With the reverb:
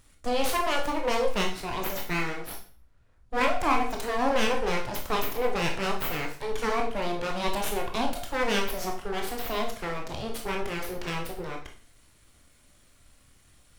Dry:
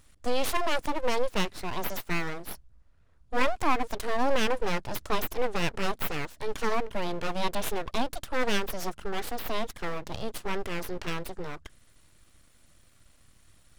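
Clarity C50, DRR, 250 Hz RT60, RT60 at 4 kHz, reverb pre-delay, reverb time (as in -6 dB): 7.5 dB, 1.5 dB, 0.40 s, 0.40 s, 18 ms, 0.45 s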